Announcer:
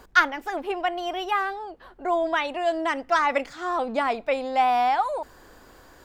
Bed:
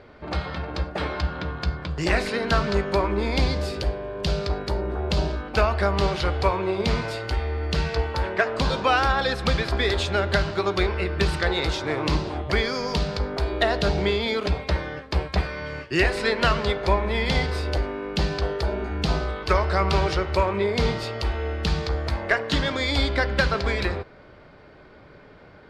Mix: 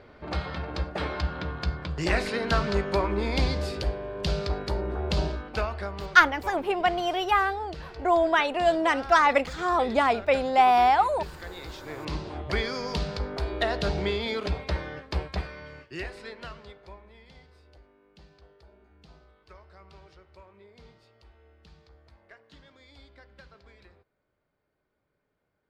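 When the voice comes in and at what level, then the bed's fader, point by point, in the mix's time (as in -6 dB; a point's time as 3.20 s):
6.00 s, +2.0 dB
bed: 5.26 s -3 dB
6.24 s -17.5 dB
11.53 s -17.5 dB
12.48 s -5 dB
15.14 s -5 dB
17.32 s -30.5 dB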